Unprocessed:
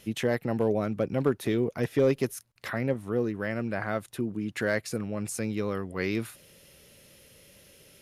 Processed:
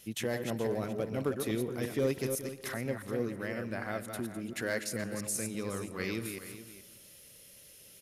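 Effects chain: chunks repeated in reverse 168 ms, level -6 dB; treble shelf 4.2 kHz +11.5 dB; delay 424 ms -13.5 dB; reverberation RT60 1.2 s, pre-delay 105 ms, DRR 17 dB; trim -7.5 dB

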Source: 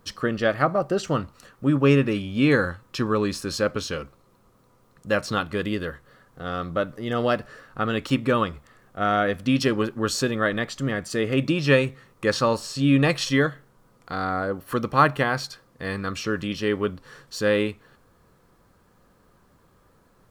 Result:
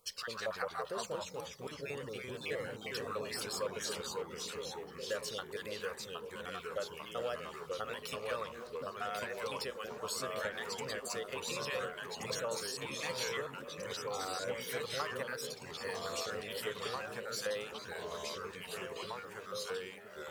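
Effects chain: random holes in the spectrogram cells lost 31%; pre-emphasis filter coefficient 0.8; compression, threshold -36 dBFS, peak gain reduction 11.5 dB; ever faster or slower copies 106 ms, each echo -2 st, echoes 3; resonant low shelf 380 Hz -7 dB, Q 3; repeats whose band climbs or falls 687 ms, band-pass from 190 Hz, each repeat 0.7 oct, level -0.5 dB; trim -1 dB

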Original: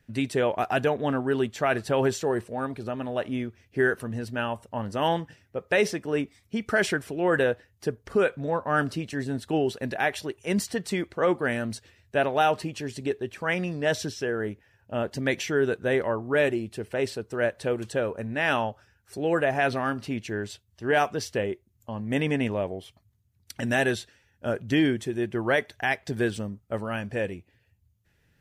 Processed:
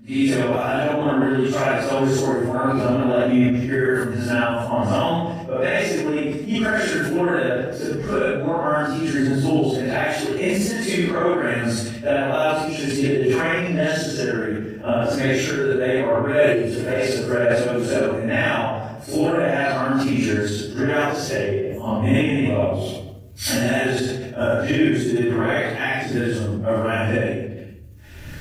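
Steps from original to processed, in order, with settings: phase randomisation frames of 200 ms; recorder AGC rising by 24 dB/s; simulated room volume 3000 m³, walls furnished, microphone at 2.6 m; decay stretcher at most 41 dB/s

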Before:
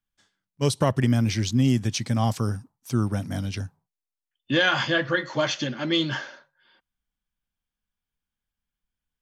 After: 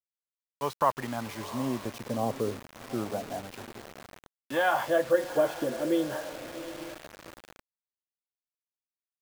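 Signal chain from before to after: wah-wah 0.31 Hz 460–1000 Hz, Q 2.9; echo that smears into a reverb 757 ms, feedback 41%, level -13 dB; word length cut 8-bit, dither none; trim +6 dB

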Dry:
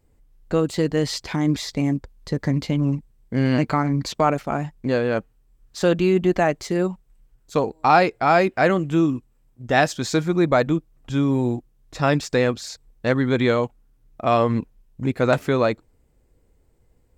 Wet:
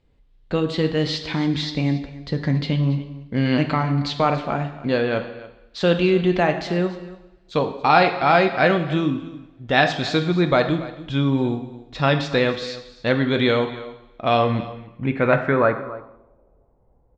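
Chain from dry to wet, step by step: delay 281 ms -17.5 dB; two-slope reverb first 0.86 s, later 2.5 s, from -26 dB, DRR 6.5 dB; low-pass sweep 3.6 kHz -> 840 Hz, 14.70–16.41 s; trim -1 dB

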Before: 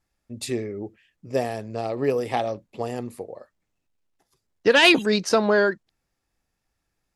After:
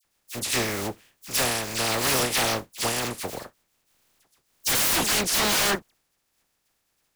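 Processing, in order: spectral contrast reduction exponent 0.3; phase dispersion lows, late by 49 ms, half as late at 2 kHz; wavefolder -21 dBFS; trim +3.5 dB

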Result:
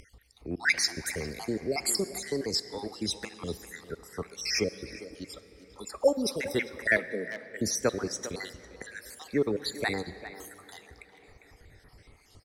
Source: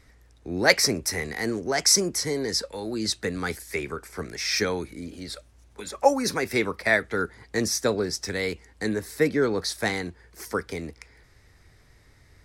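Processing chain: random holes in the spectrogram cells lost 57%; 6.97–7.59 s: rippled Chebyshev high-pass 160 Hz, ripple 6 dB; speakerphone echo 400 ms, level -13 dB; on a send at -14.5 dB: reverberation RT60 4.1 s, pre-delay 37 ms; on the sum: upward compressor, threshold -45 dBFS; trim -2 dB

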